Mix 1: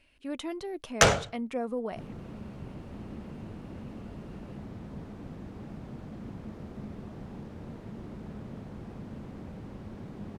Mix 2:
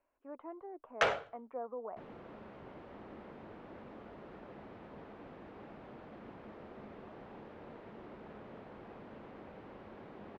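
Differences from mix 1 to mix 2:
speech: add four-pole ladder low-pass 1.3 kHz, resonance 40%; first sound -7.0 dB; master: add three-band isolator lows -17 dB, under 350 Hz, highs -23 dB, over 3.5 kHz

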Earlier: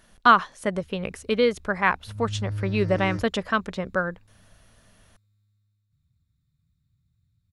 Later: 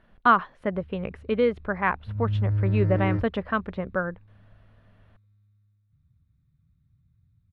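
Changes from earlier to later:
background +6.0 dB; master: add distance through air 480 m

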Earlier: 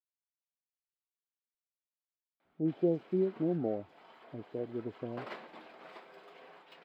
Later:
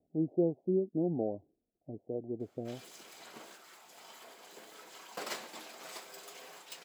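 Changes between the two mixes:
speech: entry -2.45 s; background: remove distance through air 430 m

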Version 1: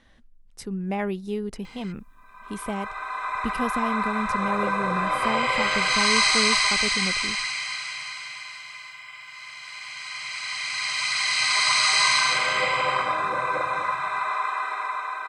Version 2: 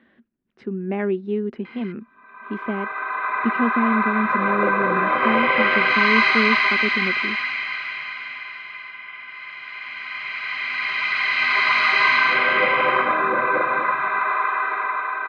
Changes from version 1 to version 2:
background +5.0 dB; master: add cabinet simulation 180–2900 Hz, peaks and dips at 230 Hz +10 dB, 370 Hz +10 dB, 860 Hz -4 dB, 1.6 kHz +4 dB

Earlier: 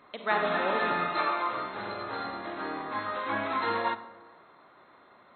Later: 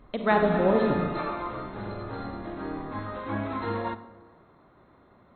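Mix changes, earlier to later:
background -8.5 dB; master: remove high-pass 1.3 kHz 6 dB/octave

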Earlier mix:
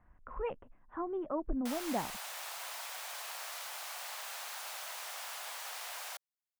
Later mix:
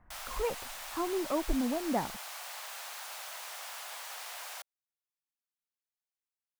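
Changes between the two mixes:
speech +4.0 dB; background: entry -1.55 s

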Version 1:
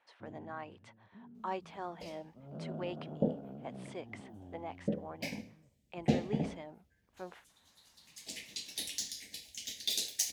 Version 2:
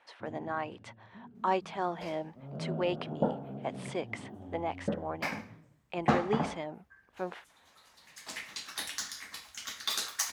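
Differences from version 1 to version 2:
speech +9.0 dB; first sound: send on; second sound: remove Butterworth band-stop 1.2 kHz, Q 0.56

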